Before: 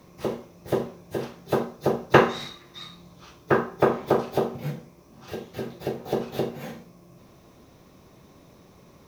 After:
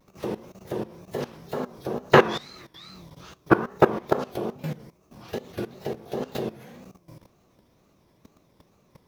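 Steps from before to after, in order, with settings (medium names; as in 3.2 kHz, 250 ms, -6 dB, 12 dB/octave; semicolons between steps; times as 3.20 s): wow and flutter 150 cents; level held to a coarse grid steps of 17 dB; trim +5.5 dB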